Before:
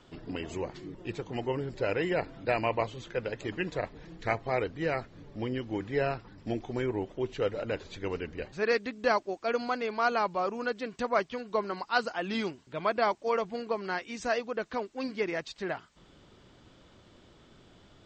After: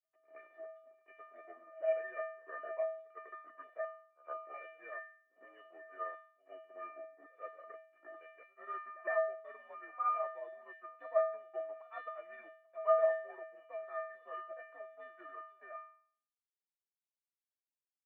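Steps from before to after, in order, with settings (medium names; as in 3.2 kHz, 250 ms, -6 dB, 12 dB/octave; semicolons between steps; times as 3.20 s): sawtooth pitch modulation -10 st, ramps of 907 ms; expander -46 dBFS; crossover distortion -42 dBFS; feedback comb 570 Hz, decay 0.53 s, mix 100%; mistuned SSB +72 Hz 260–2100 Hz; pre-echo 110 ms -22 dB; trim +13 dB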